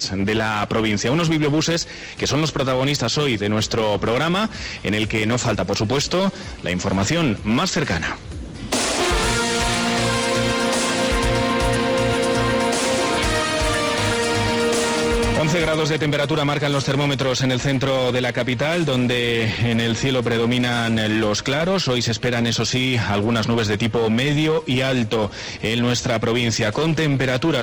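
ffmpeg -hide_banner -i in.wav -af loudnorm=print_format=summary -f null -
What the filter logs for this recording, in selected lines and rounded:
Input Integrated:    -19.9 LUFS
Input True Peak:     -13.6 dBTP
Input LRA:             1.5 LU
Input Threshold:     -29.9 LUFS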